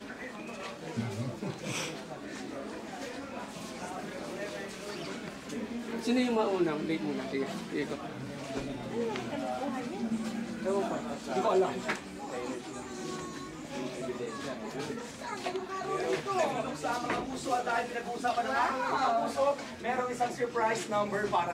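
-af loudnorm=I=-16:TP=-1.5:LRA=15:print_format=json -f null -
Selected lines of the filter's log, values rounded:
"input_i" : "-33.4",
"input_tp" : "-17.3",
"input_lra" : "7.9",
"input_thresh" : "-43.4",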